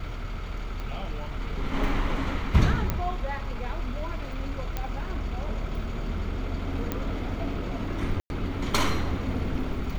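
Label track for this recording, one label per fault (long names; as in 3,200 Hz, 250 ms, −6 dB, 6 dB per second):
0.800000	0.800000	click −23 dBFS
2.900000	2.900000	click −12 dBFS
4.770000	4.770000	click −16 dBFS
6.920000	6.920000	click −14 dBFS
8.200000	8.300000	drop-out 101 ms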